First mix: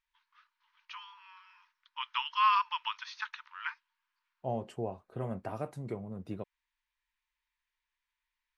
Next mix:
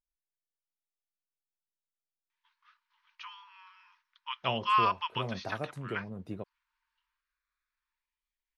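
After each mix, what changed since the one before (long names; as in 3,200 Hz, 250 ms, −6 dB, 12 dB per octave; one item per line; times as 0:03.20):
first voice: entry +2.30 s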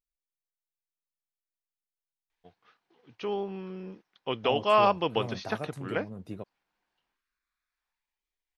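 first voice: remove linear-phase brick-wall high-pass 870 Hz
master: add high-shelf EQ 4,900 Hz +7 dB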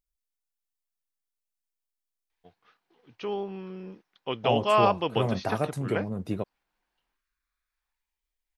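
second voice +9.0 dB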